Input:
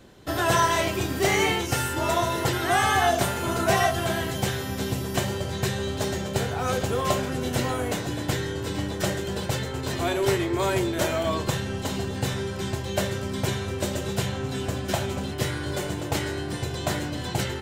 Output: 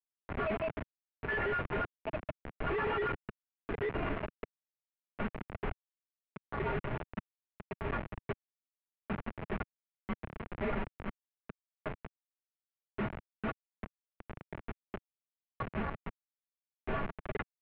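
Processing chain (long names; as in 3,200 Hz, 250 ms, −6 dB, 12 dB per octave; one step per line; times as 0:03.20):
square-wave tremolo 0.77 Hz, depth 60%, duty 40%
stiff-string resonator 180 Hz, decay 0.24 s, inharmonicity 0.008
auto-filter high-pass sine 7.2 Hz 500–1,800 Hz
comparator with hysteresis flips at −35.5 dBFS
single-sideband voice off tune −350 Hz 240–2,900 Hz
level +8 dB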